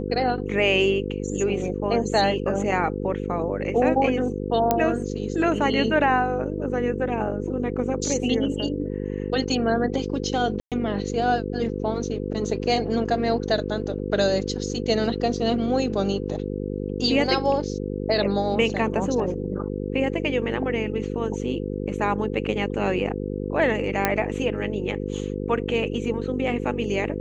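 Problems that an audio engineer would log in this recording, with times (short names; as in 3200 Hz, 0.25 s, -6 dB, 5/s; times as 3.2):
buzz 50 Hz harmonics 10 -29 dBFS
4.71 pop -6 dBFS
10.6–10.72 gap 0.117 s
24.05 pop -5 dBFS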